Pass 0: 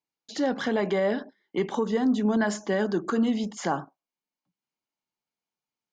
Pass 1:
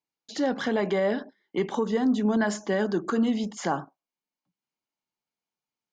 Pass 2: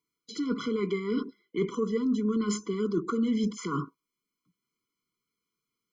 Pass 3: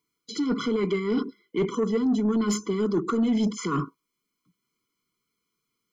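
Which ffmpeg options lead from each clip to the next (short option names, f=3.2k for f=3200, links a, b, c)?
-af anull
-af "areverse,acompressor=threshold=-33dB:ratio=6,areverse,afftfilt=real='re*eq(mod(floor(b*sr/1024/490),2),0)':imag='im*eq(mod(floor(b*sr/1024/490),2),0)':win_size=1024:overlap=0.75,volume=8dB"
-af "asoftclip=type=tanh:threshold=-22dB,volume=5.5dB"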